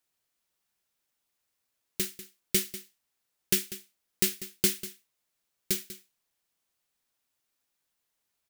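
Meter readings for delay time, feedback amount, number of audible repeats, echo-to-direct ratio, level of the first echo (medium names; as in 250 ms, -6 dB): 194 ms, no regular repeats, 1, -15.0 dB, -15.0 dB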